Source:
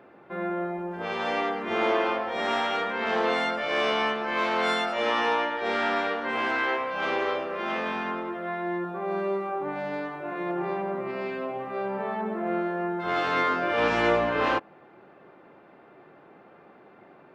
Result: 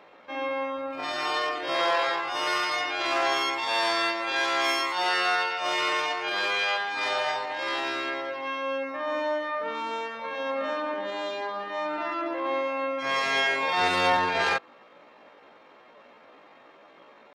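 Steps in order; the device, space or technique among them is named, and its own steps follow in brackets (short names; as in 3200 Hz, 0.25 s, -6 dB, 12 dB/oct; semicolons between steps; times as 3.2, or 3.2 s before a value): chipmunk voice (pitch shift +7.5 st)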